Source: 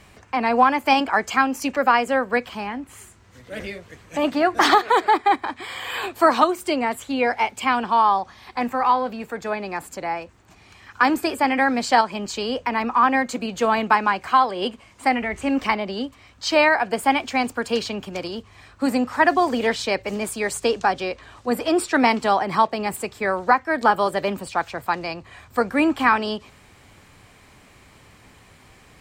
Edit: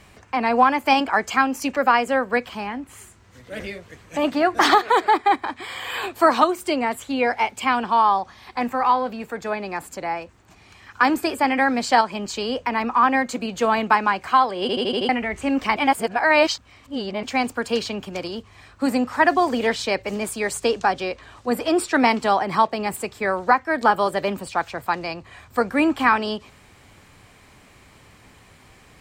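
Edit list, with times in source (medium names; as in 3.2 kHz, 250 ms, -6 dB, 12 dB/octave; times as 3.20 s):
14.61 s: stutter in place 0.08 s, 6 plays
15.76–17.23 s: reverse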